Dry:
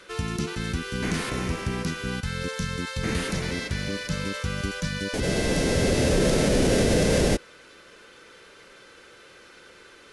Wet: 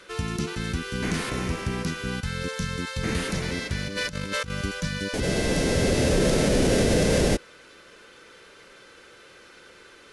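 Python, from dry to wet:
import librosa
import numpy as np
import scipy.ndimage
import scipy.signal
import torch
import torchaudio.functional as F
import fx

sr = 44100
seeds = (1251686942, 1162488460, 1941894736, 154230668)

y = fx.over_compress(x, sr, threshold_db=-33.0, ratio=-0.5, at=(3.87, 4.5), fade=0.02)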